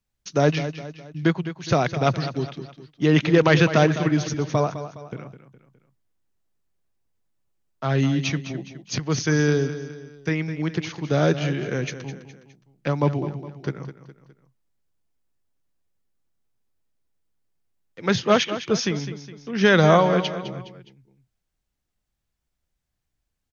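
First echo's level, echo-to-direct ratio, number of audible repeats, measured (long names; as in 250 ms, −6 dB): −12.0 dB, −11.0 dB, 3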